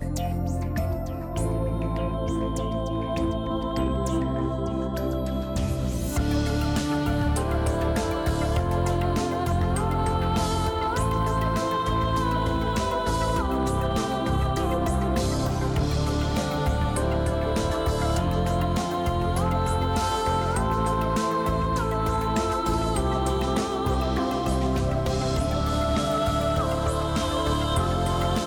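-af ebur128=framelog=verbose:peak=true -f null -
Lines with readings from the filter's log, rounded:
Integrated loudness:
  I:         -25.6 LUFS
  Threshold: -35.6 LUFS
Loudness range:
  LRA:         2.5 LU
  Threshold: -45.5 LUFS
  LRA low:   -27.4 LUFS
  LRA high:  -24.9 LUFS
True peak:
  Peak:      -16.2 dBFS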